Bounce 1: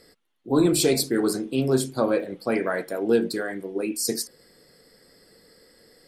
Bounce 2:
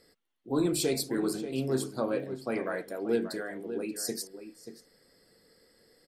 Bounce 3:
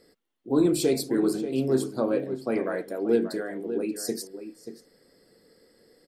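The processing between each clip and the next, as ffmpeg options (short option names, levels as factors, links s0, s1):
-filter_complex "[0:a]asplit=2[s0][s1];[s1]adelay=583.1,volume=0.316,highshelf=f=4000:g=-13.1[s2];[s0][s2]amix=inputs=2:normalize=0,volume=0.398"
-af "equalizer=f=330:t=o:w=2.1:g=6.5"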